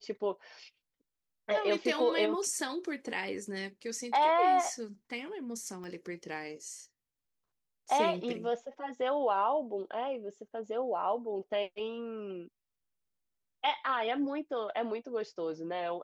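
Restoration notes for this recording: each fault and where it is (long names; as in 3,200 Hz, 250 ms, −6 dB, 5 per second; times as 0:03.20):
0:05.84: click −34 dBFS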